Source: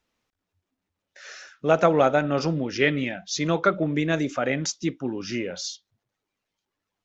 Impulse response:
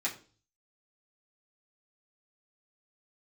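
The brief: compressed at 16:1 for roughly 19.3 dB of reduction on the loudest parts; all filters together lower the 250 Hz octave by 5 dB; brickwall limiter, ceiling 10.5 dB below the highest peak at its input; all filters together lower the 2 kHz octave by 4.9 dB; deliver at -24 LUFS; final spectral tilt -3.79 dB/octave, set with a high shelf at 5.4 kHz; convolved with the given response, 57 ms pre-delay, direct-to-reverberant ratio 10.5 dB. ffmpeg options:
-filter_complex "[0:a]equalizer=f=250:t=o:g=-7,equalizer=f=2000:t=o:g=-7.5,highshelf=f=5400:g=9,acompressor=threshold=0.0178:ratio=16,alimiter=level_in=3.16:limit=0.0631:level=0:latency=1,volume=0.316,asplit=2[s0][s1];[1:a]atrim=start_sample=2205,adelay=57[s2];[s1][s2]afir=irnorm=-1:irlink=0,volume=0.168[s3];[s0][s3]amix=inputs=2:normalize=0,volume=9.44"

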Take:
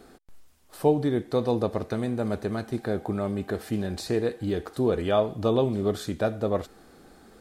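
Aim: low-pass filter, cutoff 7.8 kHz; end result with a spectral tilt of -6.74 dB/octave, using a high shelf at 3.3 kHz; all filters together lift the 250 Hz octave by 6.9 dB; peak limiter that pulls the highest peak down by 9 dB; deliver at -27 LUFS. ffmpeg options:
-af "lowpass=7800,equalizer=f=250:t=o:g=8.5,highshelf=f=3300:g=8,volume=0.841,alimiter=limit=0.168:level=0:latency=1"

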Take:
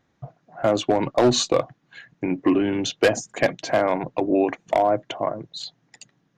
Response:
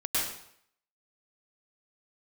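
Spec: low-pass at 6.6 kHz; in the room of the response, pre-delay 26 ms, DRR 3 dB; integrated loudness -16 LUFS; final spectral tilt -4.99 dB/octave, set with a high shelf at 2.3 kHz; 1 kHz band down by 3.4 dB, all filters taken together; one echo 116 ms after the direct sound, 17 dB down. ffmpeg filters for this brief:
-filter_complex "[0:a]lowpass=6600,equalizer=f=1000:t=o:g=-4,highshelf=f=2300:g=-8,aecho=1:1:116:0.141,asplit=2[s0][s1];[1:a]atrim=start_sample=2205,adelay=26[s2];[s1][s2]afir=irnorm=-1:irlink=0,volume=0.251[s3];[s0][s3]amix=inputs=2:normalize=0,volume=2.24"

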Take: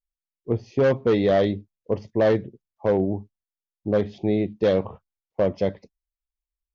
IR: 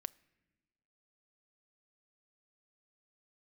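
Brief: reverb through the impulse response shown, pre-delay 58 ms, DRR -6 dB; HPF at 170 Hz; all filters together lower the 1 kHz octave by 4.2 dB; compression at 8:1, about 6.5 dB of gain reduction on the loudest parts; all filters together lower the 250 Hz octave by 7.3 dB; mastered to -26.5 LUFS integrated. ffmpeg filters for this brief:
-filter_complex "[0:a]highpass=170,equalizer=f=250:t=o:g=-8.5,equalizer=f=1000:t=o:g=-6,acompressor=threshold=0.0562:ratio=8,asplit=2[s0][s1];[1:a]atrim=start_sample=2205,adelay=58[s2];[s1][s2]afir=irnorm=-1:irlink=0,volume=2.99[s3];[s0][s3]amix=inputs=2:normalize=0,volume=0.944"

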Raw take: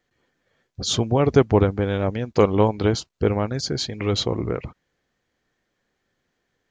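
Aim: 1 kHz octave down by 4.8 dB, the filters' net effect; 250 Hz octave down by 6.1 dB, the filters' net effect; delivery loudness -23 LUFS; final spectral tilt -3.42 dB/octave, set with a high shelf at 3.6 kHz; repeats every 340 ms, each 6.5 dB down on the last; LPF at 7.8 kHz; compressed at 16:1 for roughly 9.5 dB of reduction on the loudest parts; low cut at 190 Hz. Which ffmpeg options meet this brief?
-af "highpass=190,lowpass=7800,equalizer=f=250:t=o:g=-6,equalizer=f=1000:t=o:g=-6.5,highshelf=f=3600:g=7.5,acompressor=threshold=0.0708:ratio=16,aecho=1:1:340|680|1020|1360|1700|2040:0.473|0.222|0.105|0.0491|0.0231|0.0109,volume=1.88"

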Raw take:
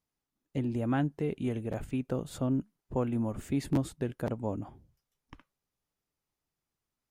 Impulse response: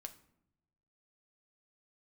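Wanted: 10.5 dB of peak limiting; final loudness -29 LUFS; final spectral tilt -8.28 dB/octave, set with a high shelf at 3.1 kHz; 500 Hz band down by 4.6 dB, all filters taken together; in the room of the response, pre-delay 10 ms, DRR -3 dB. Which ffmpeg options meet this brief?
-filter_complex "[0:a]equalizer=f=500:t=o:g=-5.5,highshelf=f=3100:g=-7,alimiter=level_in=1.88:limit=0.0631:level=0:latency=1,volume=0.531,asplit=2[s0][s1];[1:a]atrim=start_sample=2205,adelay=10[s2];[s1][s2]afir=irnorm=-1:irlink=0,volume=2.51[s3];[s0][s3]amix=inputs=2:normalize=0,volume=2.11"

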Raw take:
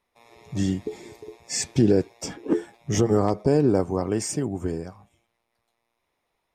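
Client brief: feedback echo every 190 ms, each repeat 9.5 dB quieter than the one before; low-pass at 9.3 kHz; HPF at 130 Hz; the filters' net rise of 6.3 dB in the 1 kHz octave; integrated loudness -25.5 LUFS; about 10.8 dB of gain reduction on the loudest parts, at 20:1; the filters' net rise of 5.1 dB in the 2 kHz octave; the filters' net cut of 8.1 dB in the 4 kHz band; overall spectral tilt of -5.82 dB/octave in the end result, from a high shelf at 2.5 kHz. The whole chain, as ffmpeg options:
-af "highpass=130,lowpass=9300,equalizer=f=1000:t=o:g=8.5,equalizer=f=2000:t=o:g=8,highshelf=f=2500:g=-8.5,equalizer=f=4000:t=o:g=-4.5,acompressor=threshold=0.0631:ratio=20,aecho=1:1:190|380|570|760:0.335|0.111|0.0365|0.012,volume=2"

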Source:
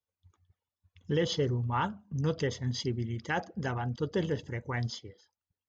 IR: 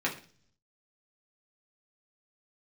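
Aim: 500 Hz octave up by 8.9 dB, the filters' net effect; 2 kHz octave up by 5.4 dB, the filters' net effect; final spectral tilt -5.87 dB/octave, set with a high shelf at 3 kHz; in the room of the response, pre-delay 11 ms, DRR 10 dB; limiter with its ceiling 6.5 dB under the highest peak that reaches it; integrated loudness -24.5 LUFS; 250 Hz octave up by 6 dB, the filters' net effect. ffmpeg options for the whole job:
-filter_complex "[0:a]equalizer=f=250:t=o:g=5.5,equalizer=f=500:t=o:g=8.5,equalizer=f=2000:t=o:g=8,highshelf=f=3000:g=-6,alimiter=limit=0.141:level=0:latency=1,asplit=2[s0][s1];[1:a]atrim=start_sample=2205,adelay=11[s2];[s1][s2]afir=irnorm=-1:irlink=0,volume=0.119[s3];[s0][s3]amix=inputs=2:normalize=0,volume=1.68"

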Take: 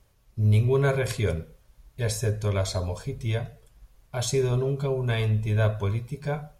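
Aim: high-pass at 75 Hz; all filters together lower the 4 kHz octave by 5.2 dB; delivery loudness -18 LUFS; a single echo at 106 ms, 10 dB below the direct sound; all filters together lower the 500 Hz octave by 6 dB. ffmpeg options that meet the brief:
-af "highpass=75,equalizer=f=500:t=o:g=-8,equalizer=f=4000:t=o:g=-6.5,aecho=1:1:106:0.316,volume=3.35"

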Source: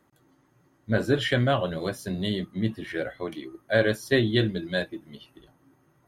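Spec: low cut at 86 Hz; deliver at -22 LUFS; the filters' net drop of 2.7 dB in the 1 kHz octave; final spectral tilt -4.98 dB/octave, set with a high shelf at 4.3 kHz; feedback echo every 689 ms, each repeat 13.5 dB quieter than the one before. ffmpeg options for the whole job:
-af "highpass=86,equalizer=f=1000:t=o:g=-4,highshelf=f=4300:g=-5,aecho=1:1:689|1378:0.211|0.0444,volume=1.88"

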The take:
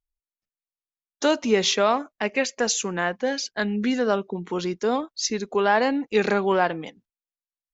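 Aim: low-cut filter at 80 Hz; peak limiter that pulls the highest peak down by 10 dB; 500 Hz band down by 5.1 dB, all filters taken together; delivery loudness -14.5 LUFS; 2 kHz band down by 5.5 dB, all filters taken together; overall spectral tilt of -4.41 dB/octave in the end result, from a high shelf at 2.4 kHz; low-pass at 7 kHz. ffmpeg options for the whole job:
-af "highpass=80,lowpass=7000,equalizer=f=500:t=o:g=-6,equalizer=f=2000:t=o:g=-3.5,highshelf=f=2400:g=-7,volume=7.94,alimiter=limit=0.596:level=0:latency=1"

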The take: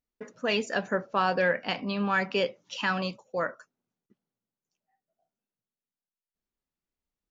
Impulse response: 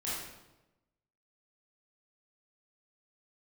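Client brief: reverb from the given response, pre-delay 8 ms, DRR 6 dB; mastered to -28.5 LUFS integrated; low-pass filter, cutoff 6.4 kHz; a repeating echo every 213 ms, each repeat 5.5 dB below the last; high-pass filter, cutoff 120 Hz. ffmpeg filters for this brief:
-filter_complex "[0:a]highpass=120,lowpass=6400,aecho=1:1:213|426|639|852|1065|1278|1491:0.531|0.281|0.149|0.079|0.0419|0.0222|0.0118,asplit=2[s0][s1];[1:a]atrim=start_sample=2205,adelay=8[s2];[s1][s2]afir=irnorm=-1:irlink=0,volume=0.316[s3];[s0][s3]amix=inputs=2:normalize=0,volume=0.841"

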